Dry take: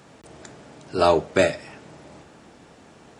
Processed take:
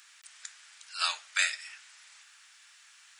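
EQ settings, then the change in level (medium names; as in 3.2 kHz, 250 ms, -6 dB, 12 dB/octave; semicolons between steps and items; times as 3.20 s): inverse Chebyshev high-pass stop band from 330 Hz, stop band 70 dB; treble shelf 3.4 kHz +7.5 dB; -2.5 dB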